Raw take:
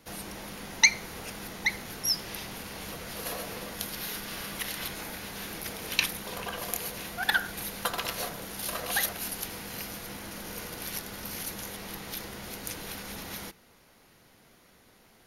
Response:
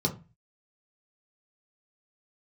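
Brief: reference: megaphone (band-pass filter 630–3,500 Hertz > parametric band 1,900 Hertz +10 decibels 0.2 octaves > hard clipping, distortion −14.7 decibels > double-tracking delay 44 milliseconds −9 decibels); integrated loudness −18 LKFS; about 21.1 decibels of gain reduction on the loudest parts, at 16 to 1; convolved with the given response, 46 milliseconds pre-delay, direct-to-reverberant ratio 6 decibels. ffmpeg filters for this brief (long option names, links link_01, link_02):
-filter_complex "[0:a]acompressor=threshold=-35dB:ratio=16,asplit=2[link_01][link_02];[1:a]atrim=start_sample=2205,adelay=46[link_03];[link_02][link_03]afir=irnorm=-1:irlink=0,volume=-13.5dB[link_04];[link_01][link_04]amix=inputs=2:normalize=0,highpass=630,lowpass=3500,equalizer=frequency=1900:width_type=o:width=0.2:gain=10,asoftclip=type=hard:threshold=-32dB,asplit=2[link_05][link_06];[link_06]adelay=44,volume=-9dB[link_07];[link_05][link_07]amix=inputs=2:normalize=0,volume=22.5dB"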